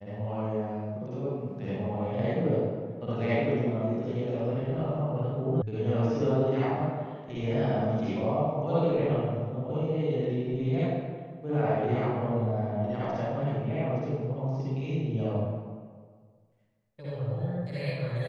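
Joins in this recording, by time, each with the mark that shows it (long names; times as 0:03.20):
0:05.62: cut off before it has died away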